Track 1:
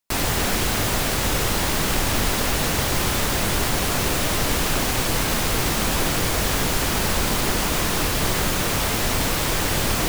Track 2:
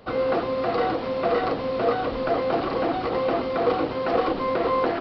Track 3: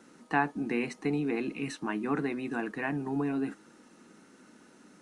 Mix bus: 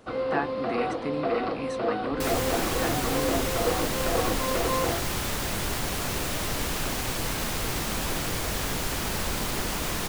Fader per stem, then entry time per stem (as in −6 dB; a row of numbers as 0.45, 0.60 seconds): −7.5, −5.0, −2.5 decibels; 2.10, 0.00, 0.00 seconds